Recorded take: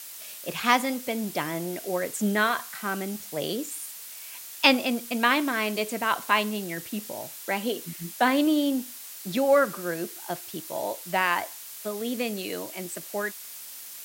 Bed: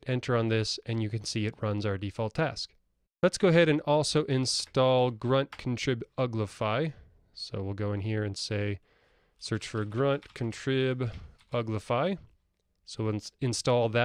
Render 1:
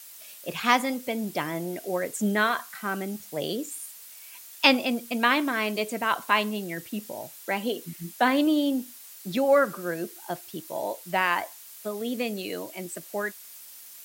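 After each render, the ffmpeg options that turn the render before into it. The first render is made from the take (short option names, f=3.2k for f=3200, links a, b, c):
-af "afftdn=nr=6:nf=-42"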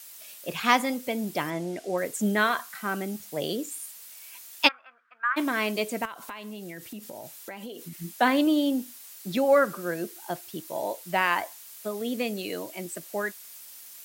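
-filter_complex "[0:a]asettb=1/sr,asplit=3[a][b][c];[a]atrim=end=1.504[d];[b]atrim=start=1.5:end=1.98,asetpts=PTS-STARTPTS,afade=t=in:d=0.004:c=qsin,afade=t=out:st=0.476:d=0.004:c=qsin,lowpass=7.9k[e];[c]atrim=start=1.976[f];[d][e]acrossfade=d=0.004:c1=hsin:c2=qsin[g];[g][f]acrossfade=d=0.004:c1=qsin:c2=hsin,asplit=3[h][i][j];[h]afade=t=out:st=4.67:d=0.02[k];[i]asuperpass=centerf=1400:order=4:qfactor=3,afade=t=in:st=4.67:d=0.02,afade=t=out:st=5.36:d=0.02[l];[j]afade=t=in:st=5.36:d=0.02[m];[k][l][m]amix=inputs=3:normalize=0,asettb=1/sr,asplit=3[n][o][p];[n]atrim=end=6.054[q];[o]atrim=start=6.05:end=7.96,asetpts=PTS-STARTPTS,afade=t=in:d=0.004:c=qsin,afade=t=out:st=1.906:d=0.004:c=qsin,acompressor=threshold=-35dB:ratio=10:attack=3.2:release=140:knee=1:detection=peak[r];[p]atrim=start=7.956[s];[q][r]acrossfade=d=0.004:c1=hsin:c2=qsin[t];[t][s]acrossfade=d=0.004:c1=qsin:c2=hsin"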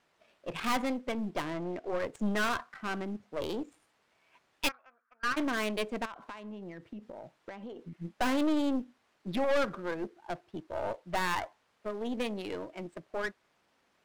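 -af "adynamicsmooth=sensitivity=4.5:basefreq=1.2k,aeval=exprs='(tanh(17.8*val(0)+0.6)-tanh(0.6))/17.8':c=same"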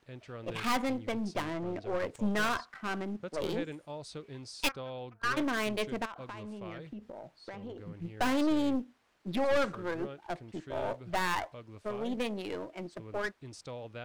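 -filter_complex "[1:a]volume=-17.5dB[a];[0:a][a]amix=inputs=2:normalize=0"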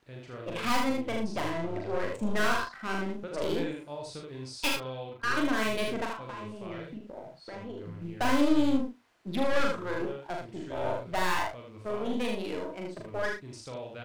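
-filter_complex "[0:a]asplit=2[a][b];[b]adelay=38,volume=-8dB[c];[a][c]amix=inputs=2:normalize=0,aecho=1:1:41|77:0.596|0.631"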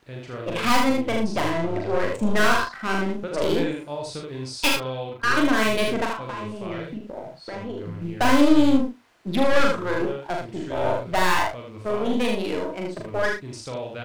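-af "volume=8dB"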